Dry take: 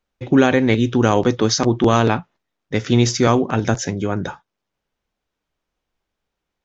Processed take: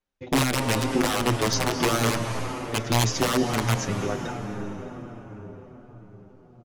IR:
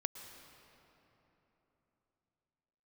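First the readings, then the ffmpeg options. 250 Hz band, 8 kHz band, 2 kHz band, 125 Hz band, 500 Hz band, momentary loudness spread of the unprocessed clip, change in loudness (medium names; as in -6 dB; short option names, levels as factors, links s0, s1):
-9.0 dB, no reading, -3.5 dB, -6.0 dB, -8.5 dB, 10 LU, -7.5 dB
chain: -filter_complex "[0:a]aeval=exprs='(mod(2.37*val(0)+1,2)-1)/2.37':c=same[s0];[1:a]atrim=start_sample=2205,asetrate=24255,aresample=44100[s1];[s0][s1]afir=irnorm=-1:irlink=0,asplit=2[s2][s3];[s3]adelay=7.1,afreqshift=-1.3[s4];[s2][s4]amix=inputs=2:normalize=1,volume=0.501"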